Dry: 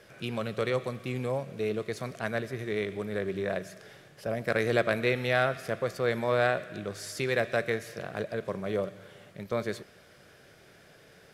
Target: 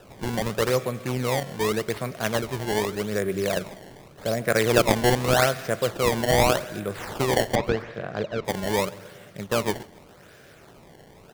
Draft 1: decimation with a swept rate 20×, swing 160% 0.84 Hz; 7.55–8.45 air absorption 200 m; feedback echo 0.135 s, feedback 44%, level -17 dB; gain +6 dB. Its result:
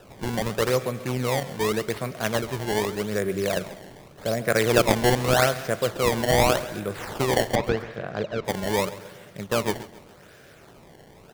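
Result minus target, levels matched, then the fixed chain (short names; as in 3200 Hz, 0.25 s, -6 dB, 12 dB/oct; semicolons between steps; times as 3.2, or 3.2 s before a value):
echo-to-direct +6.5 dB
decimation with a swept rate 20×, swing 160% 0.84 Hz; 7.55–8.45 air absorption 200 m; feedback echo 0.135 s, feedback 44%, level -23.5 dB; gain +6 dB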